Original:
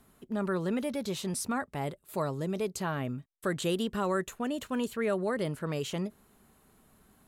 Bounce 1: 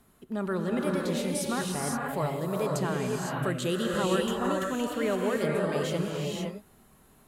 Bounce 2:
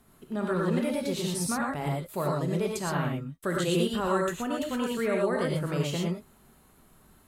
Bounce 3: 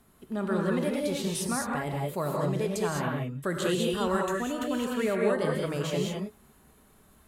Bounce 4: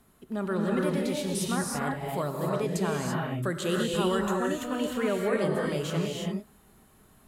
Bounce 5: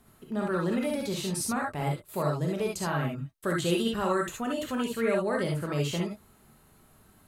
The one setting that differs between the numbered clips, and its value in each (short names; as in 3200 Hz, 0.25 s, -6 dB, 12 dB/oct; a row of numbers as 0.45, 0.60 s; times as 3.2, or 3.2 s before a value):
non-linear reverb, gate: 540, 140, 230, 360, 90 ms